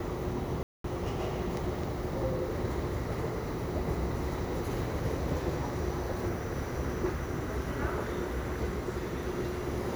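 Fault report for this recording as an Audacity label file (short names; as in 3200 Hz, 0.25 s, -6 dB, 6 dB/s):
0.630000	0.840000	gap 0.213 s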